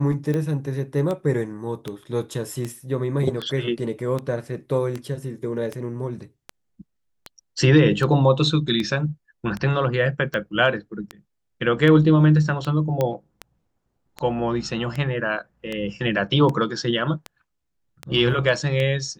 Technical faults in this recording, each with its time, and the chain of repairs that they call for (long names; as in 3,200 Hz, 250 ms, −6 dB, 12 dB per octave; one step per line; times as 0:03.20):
scratch tick 78 rpm −15 dBFS
0:13.01: click −10 dBFS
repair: click removal